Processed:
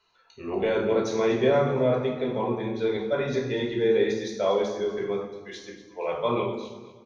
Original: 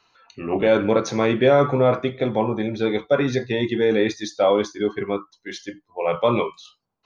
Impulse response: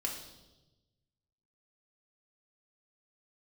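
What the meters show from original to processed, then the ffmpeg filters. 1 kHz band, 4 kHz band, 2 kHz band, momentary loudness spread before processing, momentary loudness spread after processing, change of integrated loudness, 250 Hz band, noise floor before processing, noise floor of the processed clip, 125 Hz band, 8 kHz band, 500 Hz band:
-6.5 dB, -5.5 dB, -6.5 dB, 13 LU, 15 LU, -5.0 dB, -6.0 dB, -74 dBFS, -55 dBFS, -6.0 dB, n/a, -4.5 dB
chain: -filter_complex "[0:a]aecho=1:1:239|478|717:0.178|0.0658|0.0243[a];[1:a]atrim=start_sample=2205,asetrate=61740,aresample=44100[b];[a][b]afir=irnorm=-1:irlink=0,volume=-5dB"

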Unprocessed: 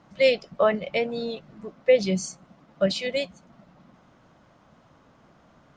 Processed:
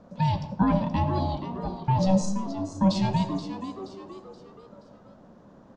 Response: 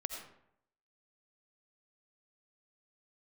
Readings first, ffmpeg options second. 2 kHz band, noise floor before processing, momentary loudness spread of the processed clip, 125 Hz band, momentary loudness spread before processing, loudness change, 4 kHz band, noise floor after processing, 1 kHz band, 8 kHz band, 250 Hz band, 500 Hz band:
-12.0 dB, -58 dBFS, 16 LU, +12.0 dB, 15 LU, -1.5 dB, -7.0 dB, -53 dBFS, +7.0 dB, -3.5 dB, +7.0 dB, -10.0 dB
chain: -filter_complex "[0:a]lowpass=f=3.6k:p=1,alimiter=limit=-19.5dB:level=0:latency=1:release=14,aeval=exprs='val(0)*sin(2*PI*380*n/s)':c=same,asplit=2[a][b];[b]equalizer=f=200:w=1.9:g=13[c];[1:a]atrim=start_sample=2205[d];[c][d]afir=irnorm=-1:irlink=0,volume=-3.5dB[e];[a][e]amix=inputs=2:normalize=0,flanger=delay=6.4:depth=5.9:regen=87:speed=0.89:shape=triangular,equalizer=f=2.2k:w=0.88:g=-13.5,asplit=5[f][g][h][i][j];[g]adelay=476,afreqshift=95,volume=-11dB[k];[h]adelay=952,afreqshift=190,volume=-18.7dB[l];[i]adelay=1428,afreqshift=285,volume=-26.5dB[m];[j]adelay=1904,afreqshift=380,volume=-34.2dB[n];[f][k][l][m][n]amix=inputs=5:normalize=0,volume=8dB"

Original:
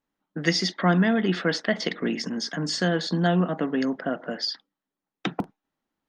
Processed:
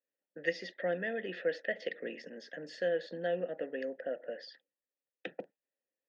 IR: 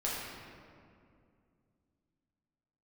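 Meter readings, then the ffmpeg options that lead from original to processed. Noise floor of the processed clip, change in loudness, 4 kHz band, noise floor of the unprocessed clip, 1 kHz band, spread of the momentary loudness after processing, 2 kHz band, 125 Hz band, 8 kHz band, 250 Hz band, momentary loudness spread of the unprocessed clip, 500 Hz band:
under -85 dBFS, -12.0 dB, -20.0 dB, under -85 dBFS, -17.0 dB, 13 LU, -10.0 dB, -25.0 dB, under -25 dB, -21.0 dB, 11 LU, -6.0 dB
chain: -filter_complex "[0:a]asplit=3[a][b][c];[a]bandpass=f=530:t=q:w=8,volume=0dB[d];[b]bandpass=f=1.84k:t=q:w=8,volume=-6dB[e];[c]bandpass=f=2.48k:t=q:w=8,volume=-9dB[f];[d][e][f]amix=inputs=3:normalize=0"

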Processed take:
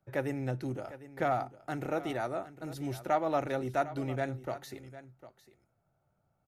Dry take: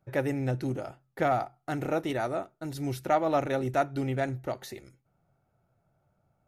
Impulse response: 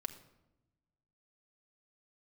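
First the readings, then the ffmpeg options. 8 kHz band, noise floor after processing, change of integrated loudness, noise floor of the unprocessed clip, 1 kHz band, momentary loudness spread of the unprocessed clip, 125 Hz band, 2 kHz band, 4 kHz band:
-5.0 dB, -77 dBFS, -4.0 dB, -75 dBFS, -3.5 dB, 11 LU, -5.0 dB, -3.5 dB, -4.5 dB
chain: -filter_complex "[0:a]aecho=1:1:753:0.168,acrossover=split=140|1500[a][b][c];[b]crystalizer=i=5.5:c=0[d];[a][d][c]amix=inputs=3:normalize=0,volume=-5dB"

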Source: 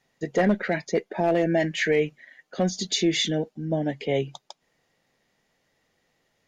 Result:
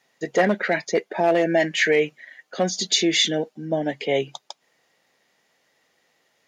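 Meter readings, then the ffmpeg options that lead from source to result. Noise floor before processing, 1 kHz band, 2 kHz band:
-72 dBFS, +4.5 dB, +5.5 dB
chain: -af "highpass=f=470:p=1,volume=6dB"

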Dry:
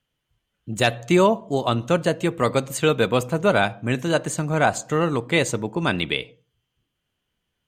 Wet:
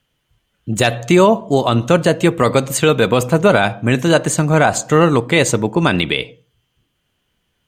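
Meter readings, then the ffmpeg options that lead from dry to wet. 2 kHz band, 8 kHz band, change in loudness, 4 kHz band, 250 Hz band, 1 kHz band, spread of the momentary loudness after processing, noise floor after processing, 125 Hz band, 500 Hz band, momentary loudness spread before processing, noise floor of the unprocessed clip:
+6.0 dB, +9.0 dB, +7.0 dB, +6.0 dB, +8.0 dB, +6.5 dB, 5 LU, -69 dBFS, +8.0 dB, +7.0 dB, 6 LU, -79 dBFS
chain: -af "alimiter=level_in=10.5dB:limit=-1dB:release=50:level=0:latency=1,volume=-1dB"

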